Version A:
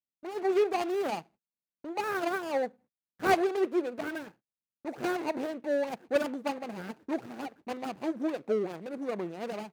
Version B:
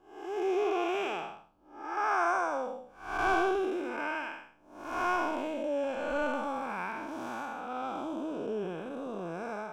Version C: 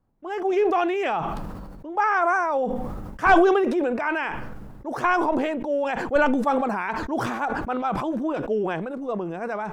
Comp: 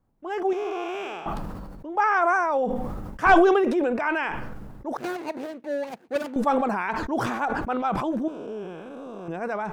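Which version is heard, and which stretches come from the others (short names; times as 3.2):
C
0.53–1.26 from B
4.97–6.36 from A
8.28–9.28 from B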